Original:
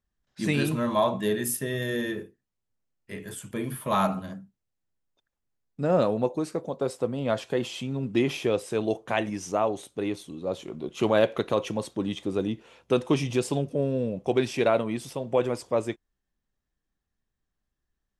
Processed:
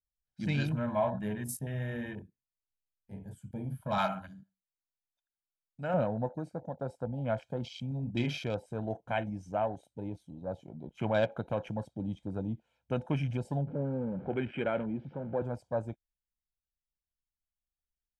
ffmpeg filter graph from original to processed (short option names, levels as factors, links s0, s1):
-filter_complex "[0:a]asettb=1/sr,asplit=3[s0][s1][s2];[s0]atrim=end=3.984[s3];[s1]atrim=start=3.98:end=5.94,asetpts=PTS-STARTPTS,afade=t=in:d=0.004:c=qsin,afade=t=out:st=1.956:d=0.004:c=qsin,tiltshelf=f=710:g=-8.5,aecho=1:1:78|156:0.2|0.0419,atrim=end_sample=86436[s4];[s2]atrim=start=5.936[s5];[s3][s4]acrossfade=d=0.004:c1=hsin:c2=qsin[s6];[s6][s5]acrossfade=d=0.004:c1=qsin:c2=hsin,asettb=1/sr,asplit=3[s7][s8][s9];[s7]atrim=end=7.884[s10];[s8]atrim=start=7.88:end=8.44,asetpts=PTS-STARTPTS,afade=t=in:d=0.004:c=qsin,afade=t=out:st=0.556:d=0.004:c=qsin,highshelf=f=6400:g=11,asplit=2[s11][s12];[s12]adelay=34,volume=0.398[s13];[s11][s13]amix=inputs=2:normalize=0,atrim=end_sample=24696[s14];[s9]atrim=start=8.436[s15];[s10][s14]acrossfade=d=0.004:c1=hsin:c2=qsin[s16];[s16][s15]acrossfade=d=0.004:c1=qsin:c2=hsin,asettb=1/sr,asplit=3[s17][s18][s19];[s17]atrim=end=13.674[s20];[s18]atrim=start=13.67:end=15.42,asetpts=PTS-STARTPTS,afade=t=in:d=0.004:c=qsin,afade=t=out:st=1.746:d=0.004:c=qsin,aeval=exprs='val(0)+0.5*0.0266*sgn(val(0))':c=same,highpass=120,equalizer=f=120:t=q:w=4:g=-4,equalizer=f=370:t=q:w=4:g=5,equalizer=f=680:t=q:w=4:g=-8,equalizer=f=1000:t=q:w=4:g=-5,lowpass=f=2500:w=0.5412,lowpass=f=2500:w=1.3066[s21];[s19]atrim=start=15.416[s22];[s20][s21]acrossfade=d=0.004:c1=hsin:c2=qsin[s23];[s23][s22]acrossfade=d=0.004:c1=qsin:c2=hsin,afwtdn=0.0141,lowshelf=f=130:g=9,aecho=1:1:1.3:0.64,volume=0.376"